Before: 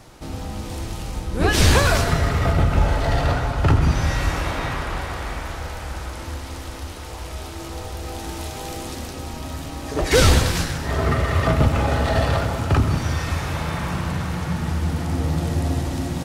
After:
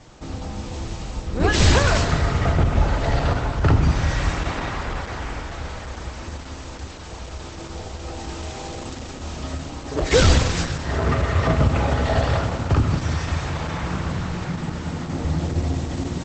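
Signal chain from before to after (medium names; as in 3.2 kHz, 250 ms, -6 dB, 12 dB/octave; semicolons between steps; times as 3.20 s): 5.19–5.82 s: peaking EQ 4.1 kHz -4.5 dB -> +2.5 dB 0.22 oct; 9.18–9.63 s: doubling 27 ms -3 dB; 14.43–15.25 s: elliptic band-pass 100–8500 Hz, stop band 60 dB; Opus 12 kbps 48 kHz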